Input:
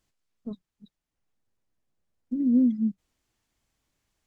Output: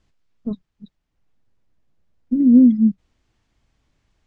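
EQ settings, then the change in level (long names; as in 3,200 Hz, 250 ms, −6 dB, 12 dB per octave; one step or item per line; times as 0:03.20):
high-frequency loss of the air 97 metres
low-shelf EQ 170 Hz +7 dB
+8.0 dB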